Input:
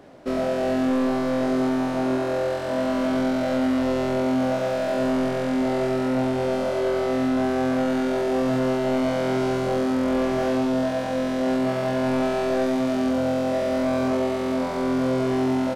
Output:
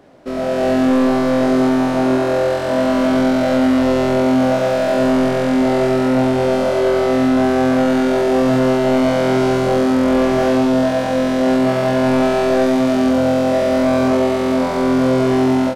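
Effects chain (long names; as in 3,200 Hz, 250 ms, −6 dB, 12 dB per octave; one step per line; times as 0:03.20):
automatic gain control gain up to 8 dB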